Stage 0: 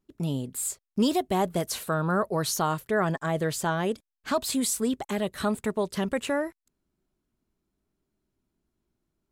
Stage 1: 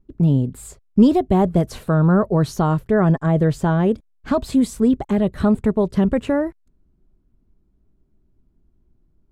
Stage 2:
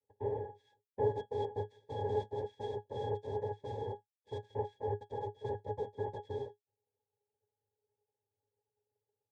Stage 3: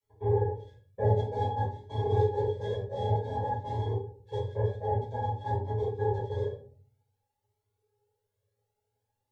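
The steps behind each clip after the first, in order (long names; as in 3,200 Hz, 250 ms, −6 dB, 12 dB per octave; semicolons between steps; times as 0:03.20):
spectral tilt −4 dB per octave; level +3.5 dB
cochlear-implant simulation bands 2; phaser with its sweep stopped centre 510 Hz, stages 4; resonances in every octave G#, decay 0.12 s; level −7.5 dB
rectangular room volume 390 cubic metres, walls furnished, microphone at 5.5 metres; flanger whose copies keep moving one way rising 0.53 Hz; level +2.5 dB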